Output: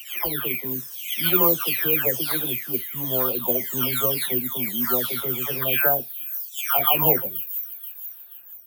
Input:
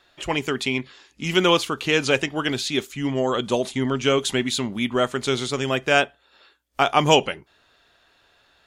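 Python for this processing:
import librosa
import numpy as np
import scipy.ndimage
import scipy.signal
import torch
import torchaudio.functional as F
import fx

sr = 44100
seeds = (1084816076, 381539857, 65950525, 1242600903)

p1 = fx.spec_delay(x, sr, highs='early', ms=627)
p2 = (np.kron(scipy.signal.resample_poly(p1, 1, 3), np.eye(3)[0]) * 3)[:len(p1)]
p3 = p2 + fx.echo_wet_highpass(p2, sr, ms=481, feedback_pct=48, hz=5500.0, wet_db=-10.0, dry=0)
y = p3 * librosa.db_to_amplitude(-4.0)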